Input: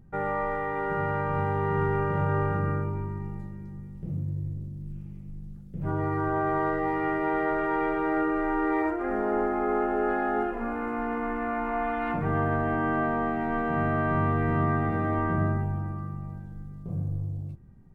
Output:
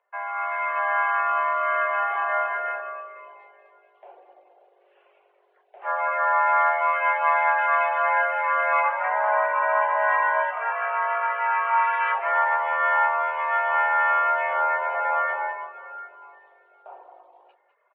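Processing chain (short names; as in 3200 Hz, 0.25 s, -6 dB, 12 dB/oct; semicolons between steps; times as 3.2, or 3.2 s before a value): mistuned SSB +220 Hz 480–2900 Hz; reverb removal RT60 0.88 s; echo 0.199 s -11.5 dB; AGC gain up to 11.5 dB; 14.53–15.28 tilt -2.5 dB/oct; gain -1 dB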